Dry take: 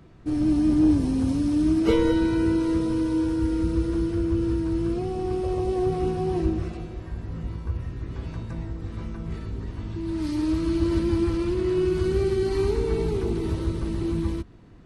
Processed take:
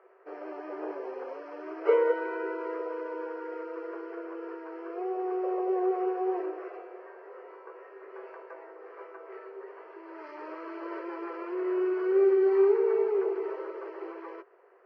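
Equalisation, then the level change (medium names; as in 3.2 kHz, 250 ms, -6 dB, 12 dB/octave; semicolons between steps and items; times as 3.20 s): boxcar filter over 12 samples; rippled Chebyshev high-pass 380 Hz, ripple 3 dB; distance through air 260 m; +4.5 dB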